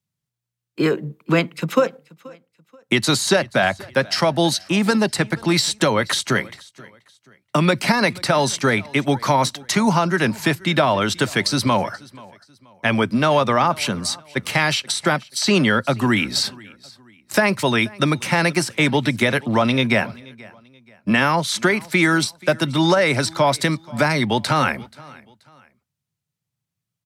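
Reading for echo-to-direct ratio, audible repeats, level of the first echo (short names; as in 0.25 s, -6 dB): -22.5 dB, 2, -23.0 dB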